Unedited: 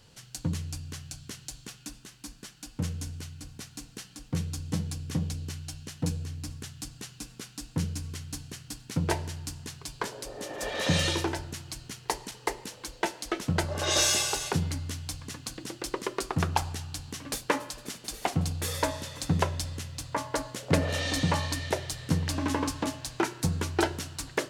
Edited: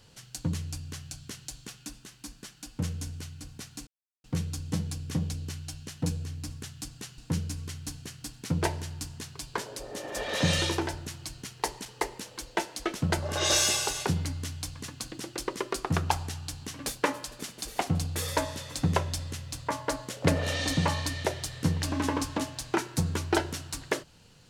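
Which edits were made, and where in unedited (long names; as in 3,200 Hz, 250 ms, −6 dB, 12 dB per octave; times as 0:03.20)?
0:03.87–0:04.24: silence
0:07.18–0:07.64: remove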